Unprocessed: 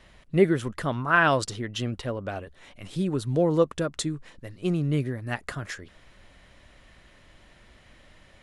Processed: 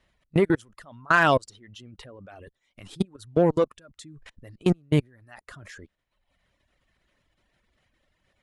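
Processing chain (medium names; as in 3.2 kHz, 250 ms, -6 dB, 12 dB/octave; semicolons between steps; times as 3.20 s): level held to a coarse grid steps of 24 dB; Chebyshev shaper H 7 -29 dB, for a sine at -12.5 dBFS; reverb removal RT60 0.93 s; trim +7 dB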